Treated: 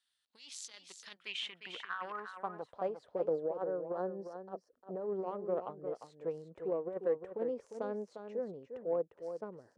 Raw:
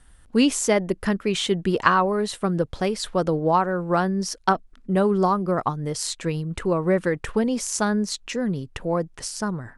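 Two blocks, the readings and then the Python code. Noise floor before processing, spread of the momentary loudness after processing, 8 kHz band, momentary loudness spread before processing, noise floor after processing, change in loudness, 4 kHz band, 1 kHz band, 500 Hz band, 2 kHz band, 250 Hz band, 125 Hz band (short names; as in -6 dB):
-52 dBFS, 11 LU, under -20 dB, 8 LU, -78 dBFS, -16.0 dB, -16.0 dB, -20.0 dB, -12.0 dB, -19.5 dB, -23.0 dB, -26.5 dB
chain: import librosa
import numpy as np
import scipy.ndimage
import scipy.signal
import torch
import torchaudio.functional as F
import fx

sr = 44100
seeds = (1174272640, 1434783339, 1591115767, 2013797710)

p1 = fx.cheby_harmonics(x, sr, harmonics=(7,), levels_db=(-20,), full_scale_db=-1.0)
p2 = scipy.signal.sosfilt(scipy.signal.butter(2, 44.0, 'highpass', fs=sr, output='sos'), p1)
p3 = fx.over_compress(p2, sr, threshold_db=-27.0, ratio=-0.5)
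p4 = fx.spec_box(p3, sr, start_s=3.32, length_s=1.74, low_hz=1900.0, high_hz=3900.0, gain_db=-9)
p5 = fx.filter_sweep_bandpass(p4, sr, from_hz=4000.0, to_hz=500.0, start_s=1.02, end_s=3.02, q=3.2)
p6 = p5 + fx.echo_single(p5, sr, ms=352, db=-8.5, dry=0)
y = p6 * 10.0 ** (-1.0 / 20.0)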